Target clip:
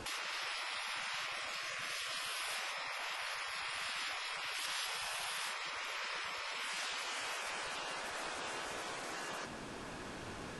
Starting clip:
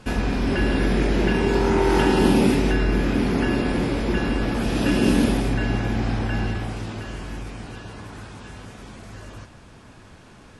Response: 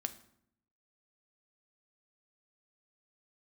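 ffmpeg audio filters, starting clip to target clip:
-af "acompressor=threshold=0.0794:ratio=12,alimiter=limit=0.106:level=0:latency=1:release=499,afftfilt=real='re*lt(hypot(re,im),0.0251)':imag='im*lt(hypot(re,im),0.0251)':win_size=1024:overlap=0.75,volume=1.5"

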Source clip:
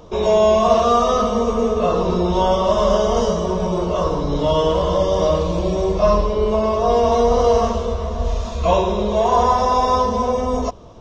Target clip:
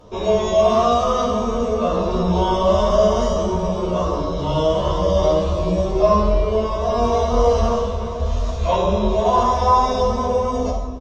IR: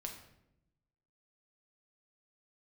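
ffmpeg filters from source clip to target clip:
-filter_complex "[1:a]atrim=start_sample=2205,asetrate=25578,aresample=44100[s0];[0:a][s0]afir=irnorm=-1:irlink=0,asplit=2[s1][s2];[s2]adelay=11.7,afreqshift=2.9[s3];[s1][s3]amix=inputs=2:normalize=1,volume=1.12"

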